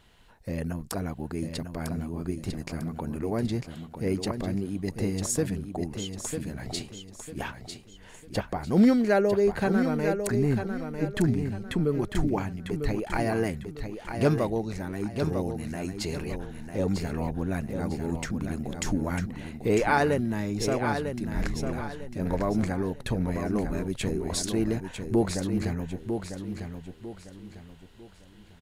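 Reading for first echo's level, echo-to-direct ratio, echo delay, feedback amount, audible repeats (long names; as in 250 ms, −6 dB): −7.0 dB, −6.5 dB, 949 ms, 33%, 3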